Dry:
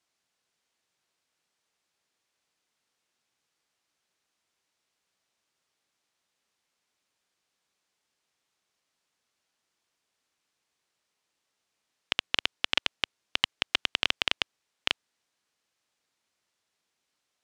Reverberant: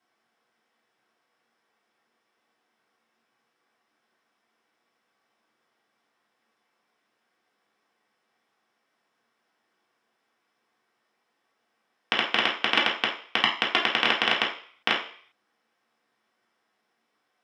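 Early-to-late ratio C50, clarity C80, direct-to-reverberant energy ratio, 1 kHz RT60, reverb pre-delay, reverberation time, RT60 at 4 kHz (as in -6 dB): 6.5 dB, 11.0 dB, -4.5 dB, 0.50 s, 3 ms, 0.50 s, 0.55 s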